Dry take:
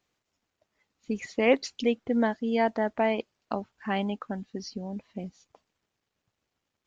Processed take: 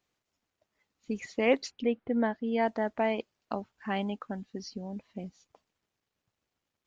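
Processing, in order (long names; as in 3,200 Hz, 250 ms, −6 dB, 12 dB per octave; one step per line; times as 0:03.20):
0:01.70–0:02.61: low-pass filter 2,100 Hz → 3,600 Hz 12 dB per octave
level −3 dB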